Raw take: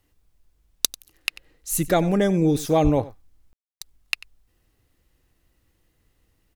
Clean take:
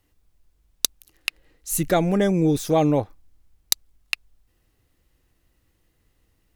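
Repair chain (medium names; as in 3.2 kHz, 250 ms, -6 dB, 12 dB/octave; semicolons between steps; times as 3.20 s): 2.83–2.95 s: high-pass 140 Hz 24 dB/octave; room tone fill 3.53–3.81 s; inverse comb 93 ms -19 dB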